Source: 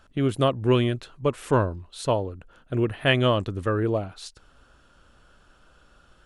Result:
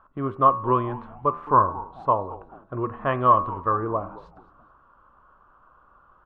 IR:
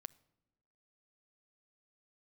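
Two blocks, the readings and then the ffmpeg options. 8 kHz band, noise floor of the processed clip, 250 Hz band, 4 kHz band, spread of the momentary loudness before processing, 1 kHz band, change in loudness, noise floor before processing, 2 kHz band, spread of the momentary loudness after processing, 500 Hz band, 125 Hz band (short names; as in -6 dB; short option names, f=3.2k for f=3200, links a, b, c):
under -35 dB, -58 dBFS, -5.0 dB, under -20 dB, 11 LU, +11.0 dB, +1.5 dB, -58 dBFS, -7.5 dB, 13 LU, -2.5 dB, -6.5 dB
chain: -filter_complex "[0:a]lowpass=f=1.1k:t=q:w=10,lowshelf=f=320:g=-3.5,bandreject=f=78.88:t=h:w=4,bandreject=f=157.76:t=h:w=4,bandreject=f=236.64:t=h:w=4,bandreject=f=315.52:t=h:w=4,bandreject=f=394.4:t=h:w=4,bandreject=f=473.28:t=h:w=4,bandreject=f=552.16:t=h:w=4,bandreject=f=631.04:t=h:w=4,bandreject=f=709.92:t=h:w=4,bandreject=f=788.8:t=h:w=4,bandreject=f=867.68:t=h:w=4,bandreject=f=946.56:t=h:w=4,bandreject=f=1.02544k:t=h:w=4,bandreject=f=1.10432k:t=h:w=4,bandreject=f=1.1832k:t=h:w=4,bandreject=f=1.26208k:t=h:w=4,bandreject=f=1.34096k:t=h:w=4,bandreject=f=1.41984k:t=h:w=4,bandreject=f=1.49872k:t=h:w=4,bandreject=f=1.5776k:t=h:w=4,bandreject=f=1.65648k:t=h:w=4,bandreject=f=1.73536k:t=h:w=4,bandreject=f=1.81424k:t=h:w=4,bandreject=f=1.89312k:t=h:w=4,bandreject=f=1.972k:t=h:w=4,bandreject=f=2.05088k:t=h:w=4,bandreject=f=2.12976k:t=h:w=4,bandreject=f=2.20864k:t=h:w=4,bandreject=f=2.28752k:t=h:w=4,bandreject=f=2.3664k:t=h:w=4,bandreject=f=2.44528k:t=h:w=4,bandreject=f=2.52416k:t=h:w=4,bandreject=f=2.60304k:t=h:w=4,bandreject=f=2.68192k:t=h:w=4,bandreject=f=2.7608k:t=h:w=4,bandreject=f=2.83968k:t=h:w=4,asplit=2[a][b];[b]asplit=3[c][d][e];[c]adelay=216,afreqshift=-140,volume=-18dB[f];[d]adelay=432,afreqshift=-280,volume=-26.6dB[g];[e]adelay=648,afreqshift=-420,volume=-35.3dB[h];[f][g][h]amix=inputs=3:normalize=0[i];[a][i]amix=inputs=2:normalize=0,volume=-3.5dB"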